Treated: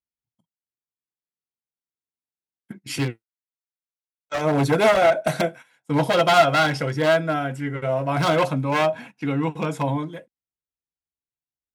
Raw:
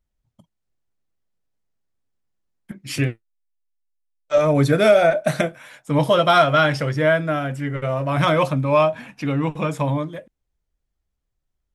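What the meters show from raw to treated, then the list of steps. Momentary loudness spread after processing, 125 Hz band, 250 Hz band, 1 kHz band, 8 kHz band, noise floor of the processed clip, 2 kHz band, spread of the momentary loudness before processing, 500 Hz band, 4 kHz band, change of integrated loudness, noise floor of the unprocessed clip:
12 LU, −4.0 dB, −2.0 dB, −0.5 dB, +1.0 dB, below −85 dBFS, −1.5 dB, 11 LU, −2.5 dB, −0.5 dB, −2.0 dB, −78 dBFS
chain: wavefolder on the positive side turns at −13.5 dBFS
noise gate −37 dBFS, range −16 dB
high-pass filter 140 Hz 6 dB per octave
dynamic equaliser 620 Hz, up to +7 dB, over −33 dBFS, Q 3.5
notch comb filter 600 Hz

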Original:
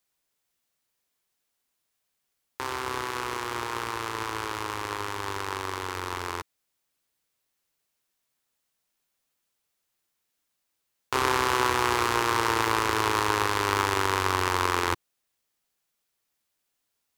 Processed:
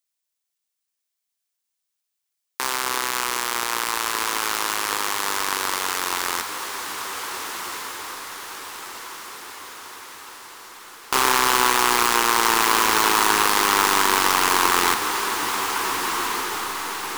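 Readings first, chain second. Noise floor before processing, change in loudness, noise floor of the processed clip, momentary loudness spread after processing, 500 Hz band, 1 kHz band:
−80 dBFS, +6.5 dB, −81 dBFS, 19 LU, +2.5 dB, +6.5 dB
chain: running median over 3 samples
RIAA equalisation recording
leveller curve on the samples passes 3
on a send: feedback delay with all-pass diffusion 1,509 ms, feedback 57%, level −6 dB
on the sum: level −4.5 dB

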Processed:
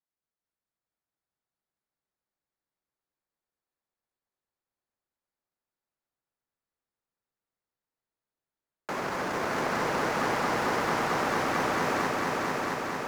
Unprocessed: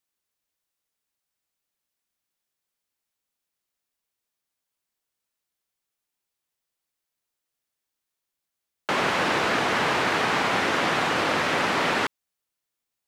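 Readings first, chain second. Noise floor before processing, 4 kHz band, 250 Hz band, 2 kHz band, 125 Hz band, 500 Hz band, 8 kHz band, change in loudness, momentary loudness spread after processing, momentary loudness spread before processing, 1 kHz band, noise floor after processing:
−85 dBFS, −10.0 dB, −2.5 dB, −6.5 dB, −2.0 dB, −2.5 dB, −3.5 dB, −5.5 dB, 4 LU, 3 LU, −3.0 dB, below −85 dBFS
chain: running median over 15 samples
echo machine with several playback heads 224 ms, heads all three, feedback 74%, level −6 dB
level −7 dB

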